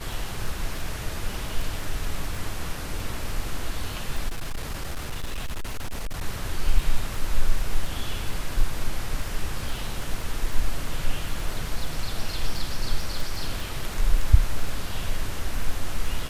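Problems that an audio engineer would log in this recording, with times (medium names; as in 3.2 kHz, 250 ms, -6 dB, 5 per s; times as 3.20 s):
crackle 16 per s -27 dBFS
4.28–6.24 s: clipped -25 dBFS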